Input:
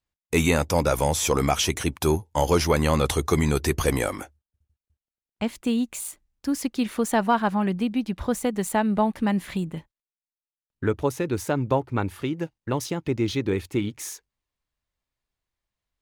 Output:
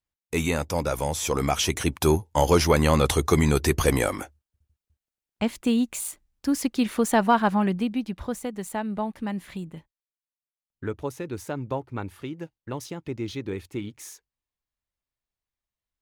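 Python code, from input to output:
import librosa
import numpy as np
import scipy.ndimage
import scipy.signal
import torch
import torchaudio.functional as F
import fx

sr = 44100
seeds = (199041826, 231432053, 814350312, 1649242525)

y = fx.gain(x, sr, db=fx.line((1.15, -4.5), (1.96, 1.5), (7.58, 1.5), (8.49, -7.0)))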